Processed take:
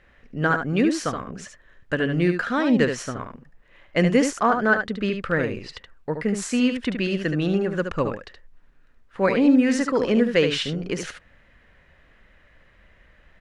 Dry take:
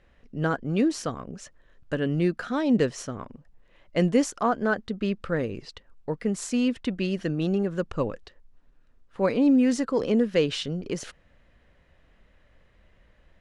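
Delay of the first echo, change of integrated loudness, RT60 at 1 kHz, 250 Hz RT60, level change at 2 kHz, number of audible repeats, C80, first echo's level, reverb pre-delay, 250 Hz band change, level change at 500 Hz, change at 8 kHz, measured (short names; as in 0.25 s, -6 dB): 73 ms, +3.5 dB, none, none, +9.5 dB, 1, none, -7.0 dB, none, +3.0 dB, +3.5 dB, +3.5 dB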